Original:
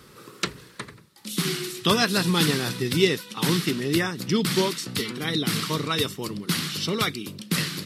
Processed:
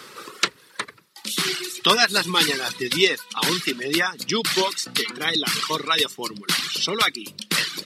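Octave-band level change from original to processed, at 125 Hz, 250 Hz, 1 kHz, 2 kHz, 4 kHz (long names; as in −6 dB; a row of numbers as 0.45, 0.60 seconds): −9.5, −4.5, +5.0, +6.0, +5.5 decibels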